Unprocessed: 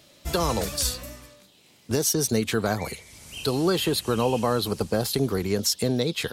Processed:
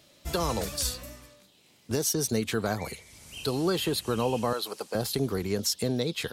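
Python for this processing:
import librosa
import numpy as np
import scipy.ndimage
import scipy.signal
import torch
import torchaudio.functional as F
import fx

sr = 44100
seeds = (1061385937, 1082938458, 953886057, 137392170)

y = fx.highpass(x, sr, hz=510.0, slope=12, at=(4.53, 4.95))
y = y * 10.0 ** (-4.0 / 20.0)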